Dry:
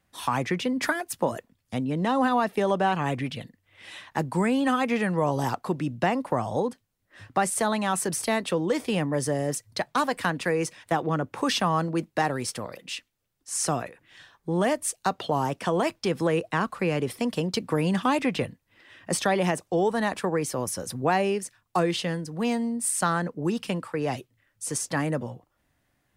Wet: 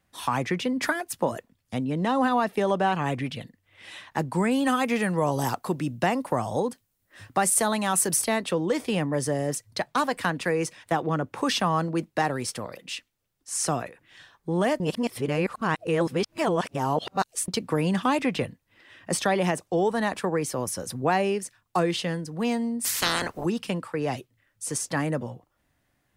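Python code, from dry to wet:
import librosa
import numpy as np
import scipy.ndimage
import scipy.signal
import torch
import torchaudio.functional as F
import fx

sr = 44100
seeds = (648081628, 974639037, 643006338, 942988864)

y = fx.high_shelf(x, sr, hz=7300.0, db=11.0, at=(4.51, 8.24))
y = fx.spec_clip(y, sr, under_db=29, at=(22.84, 23.44), fade=0.02)
y = fx.edit(y, sr, fx.reverse_span(start_s=14.8, length_s=2.68), tone=tone)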